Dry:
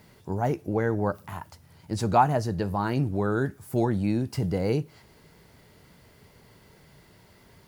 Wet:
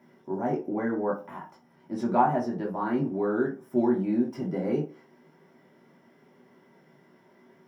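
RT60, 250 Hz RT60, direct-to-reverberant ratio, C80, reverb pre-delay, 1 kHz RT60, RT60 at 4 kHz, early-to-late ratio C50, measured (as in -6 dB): 0.40 s, 0.35 s, -4.0 dB, 16.0 dB, 3 ms, 0.40 s, 0.20 s, 9.0 dB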